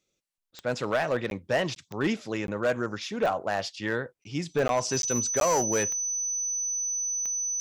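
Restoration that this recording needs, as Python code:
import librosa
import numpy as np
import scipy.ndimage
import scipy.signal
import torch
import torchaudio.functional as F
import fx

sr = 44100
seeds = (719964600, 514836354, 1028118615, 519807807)

y = fx.fix_declip(x, sr, threshold_db=-19.0)
y = fx.fix_declick_ar(y, sr, threshold=10.0)
y = fx.notch(y, sr, hz=6000.0, q=30.0)
y = fx.fix_interpolate(y, sr, at_s=(0.51, 1.3, 1.75, 2.47, 4.24, 4.68, 5.02, 5.4), length_ms=12.0)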